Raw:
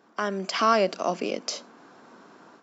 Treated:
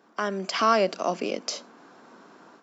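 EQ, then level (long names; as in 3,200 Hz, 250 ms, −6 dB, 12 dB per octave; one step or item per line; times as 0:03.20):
high-pass filter 120 Hz
0.0 dB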